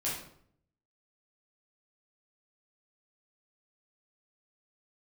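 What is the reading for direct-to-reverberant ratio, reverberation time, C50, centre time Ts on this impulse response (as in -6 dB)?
-7.5 dB, 0.65 s, 2.5 dB, 47 ms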